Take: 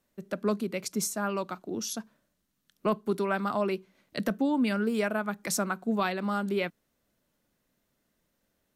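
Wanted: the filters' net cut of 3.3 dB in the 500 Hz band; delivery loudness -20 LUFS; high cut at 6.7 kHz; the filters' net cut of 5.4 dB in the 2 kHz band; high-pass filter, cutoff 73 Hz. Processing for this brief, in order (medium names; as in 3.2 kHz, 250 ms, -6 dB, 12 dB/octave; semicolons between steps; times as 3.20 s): high-pass 73 Hz; low-pass 6.7 kHz; peaking EQ 500 Hz -4 dB; peaking EQ 2 kHz -7.5 dB; trim +12.5 dB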